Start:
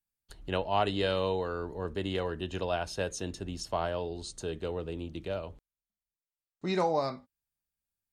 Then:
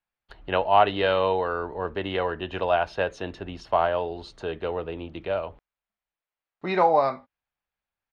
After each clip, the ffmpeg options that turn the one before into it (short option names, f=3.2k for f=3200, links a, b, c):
-af "firequalizer=gain_entry='entry(180,0);entry(710,11);entry(2400,8);entry(7700,-19)':delay=0.05:min_phase=1"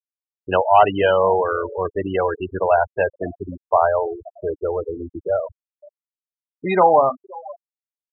-filter_complex "[0:a]acontrast=80,asplit=2[a][b];[b]adelay=519,volume=-18dB,highshelf=f=4k:g=-11.7[c];[a][c]amix=inputs=2:normalize=0,afftfilt=real='re*gte(hypot(re,im),0.178)':imag='im*gte(hypot(re,im),0.178)':win_size=1024:overlap=0.75"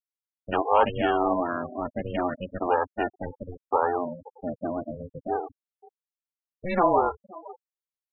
-af "aeval=exprs='val(0)*sin(2*PI*180*n/s)':c=same,volume=-4.5dB"